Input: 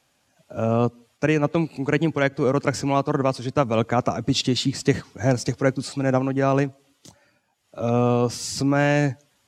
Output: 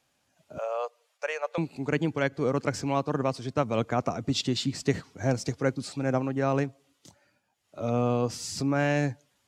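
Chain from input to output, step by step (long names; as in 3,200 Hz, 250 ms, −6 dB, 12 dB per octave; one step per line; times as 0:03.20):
0:00.58–0:01.58: elliptic high-pass filter 510 Hz, stop band 50 dB
level −6 dB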